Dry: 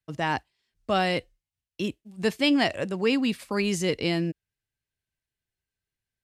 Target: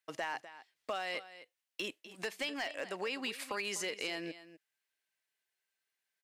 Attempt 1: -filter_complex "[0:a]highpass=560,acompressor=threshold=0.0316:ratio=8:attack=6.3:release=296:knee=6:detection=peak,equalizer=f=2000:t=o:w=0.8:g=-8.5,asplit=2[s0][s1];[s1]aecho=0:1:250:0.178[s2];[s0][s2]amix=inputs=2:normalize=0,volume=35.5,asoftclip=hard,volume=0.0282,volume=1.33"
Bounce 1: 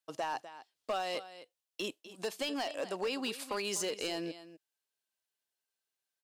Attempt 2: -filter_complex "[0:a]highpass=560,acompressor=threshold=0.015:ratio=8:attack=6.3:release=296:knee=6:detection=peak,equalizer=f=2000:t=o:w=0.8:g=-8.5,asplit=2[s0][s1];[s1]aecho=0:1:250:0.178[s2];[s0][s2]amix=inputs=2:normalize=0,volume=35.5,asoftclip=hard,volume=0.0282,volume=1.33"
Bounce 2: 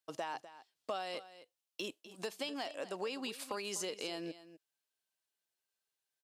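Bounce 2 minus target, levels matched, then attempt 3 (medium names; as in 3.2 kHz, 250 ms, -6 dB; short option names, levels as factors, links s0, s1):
2 kHz band -5.5 dB
-filter_complex "[0:a]highpass=560,acompressor=threshold=0.015:ratio=8:attack=6.3:release=296:knee=6:detection=peak,equalizer=f=2000:t=o:w=0.8:g=3,asplit=2[s0][s1];[s1]aecho=0:1:250:0.178[s2];[s0][s2]amix=inputs=2:normalize=0,volume=35.5,asoftclip=hard,volume=0.0282,volume=1.33"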